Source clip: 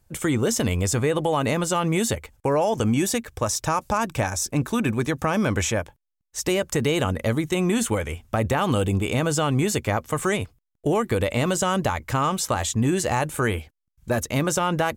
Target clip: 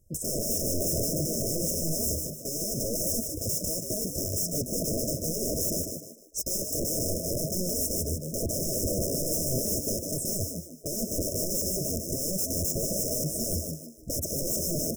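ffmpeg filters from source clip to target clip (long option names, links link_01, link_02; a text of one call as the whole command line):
ffmpeg -i in.wav -filter_complex "[0:a]aeval=exprs='(mod(13.3*val(0)+1,2)-1)/13.3':channel_layout=same,asplit=5[link_01][link_02][link_03][link_04][link_05];[link_02]adelay=151,afreqshift=76,volume=-5dB[link_06];[link_03]adelay=302,afreqshift=152,volume=-14.4dB[link_07];[link_04]adelay=453,afreqshift=228,volume=-23.7dB[link_08];[link_05]adelay=604,afreqshift=304,volume=-33.1dB[link_09];[link_01][link_06][link_07][link_08][link_09]amix=inputs=5:normalize=0,afftfilt=real='re*(1-between(b*sr/4096,670,5100))':imag='im*(1-between(b*sr/4096,670,5100))':win_size=4096:overlap=0.75" out.wav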